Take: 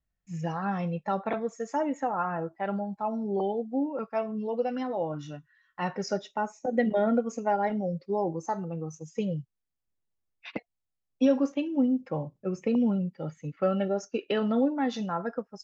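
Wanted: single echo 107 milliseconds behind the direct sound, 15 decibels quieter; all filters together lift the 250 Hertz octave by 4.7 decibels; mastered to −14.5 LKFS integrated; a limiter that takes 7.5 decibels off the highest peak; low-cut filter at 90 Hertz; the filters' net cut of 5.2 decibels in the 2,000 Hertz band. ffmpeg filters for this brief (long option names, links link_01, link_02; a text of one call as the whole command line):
ffmpeg -i in.wav -af "highpass=90,equalizer=frequency=250:width_type=o:gain=5.5,equalizer=frequency=2000:width_type=o:gain=-7,alimiter=limit=-17dB:level=0:latency=1,aecho=1:1:107:0.178,volume=14dB" out.wav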